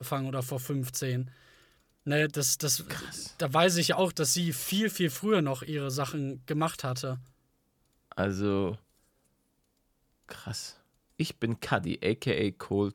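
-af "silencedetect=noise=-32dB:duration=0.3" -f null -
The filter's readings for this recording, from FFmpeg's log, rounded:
silence_start: 1.23
silence_end: 2.07 | silence_duration: 0.84
silence_start: 7.15
silence_end: 8.12 | silence_duration: 0.96
silence_start: 8.74
silence_end: 10.31 | silence_duration: 1.56
silence_start: 10.67
silence_end: 11.20 | silence_duration: 0.52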